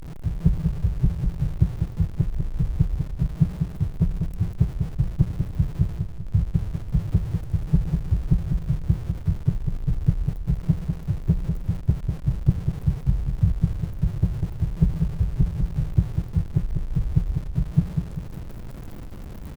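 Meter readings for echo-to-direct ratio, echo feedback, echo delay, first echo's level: -5.0 dB, 43%, 0.196 s, -6.0 dB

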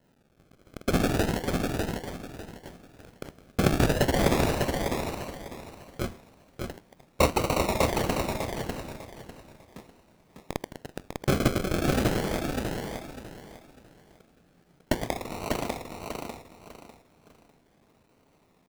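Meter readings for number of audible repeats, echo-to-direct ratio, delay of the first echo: 3, -3.5 dB, 0.599 s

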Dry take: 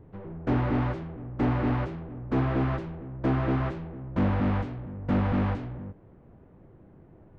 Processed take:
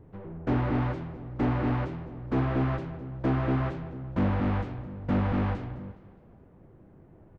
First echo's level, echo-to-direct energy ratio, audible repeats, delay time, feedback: -17.5 dB, -16.5 dB, 3, 0.208 s, 46%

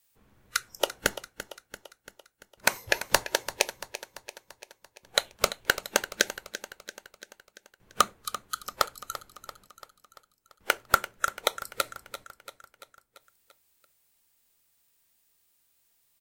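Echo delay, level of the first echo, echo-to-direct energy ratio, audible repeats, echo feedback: 0.34 s, -13.5 dB, -12.0 dB, 5, 57%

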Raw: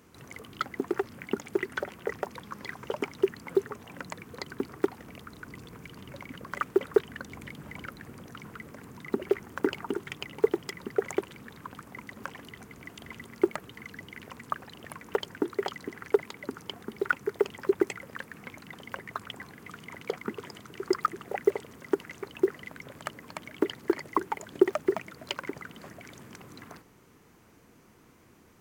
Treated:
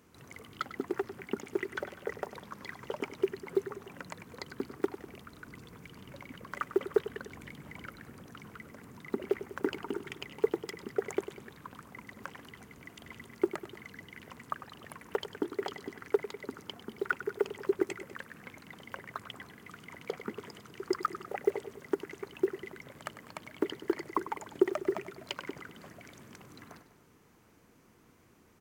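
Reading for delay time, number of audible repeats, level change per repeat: 99 ms, 3, -4.5 dB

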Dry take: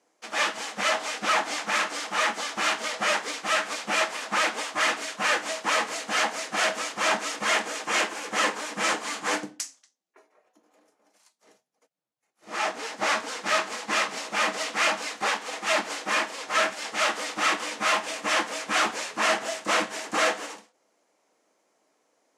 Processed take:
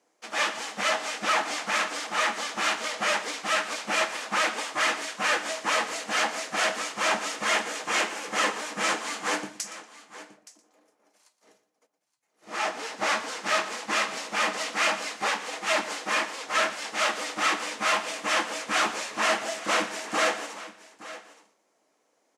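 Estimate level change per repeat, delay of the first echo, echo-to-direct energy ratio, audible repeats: no steady repeat, 0.118 s, -13.0 dB, 3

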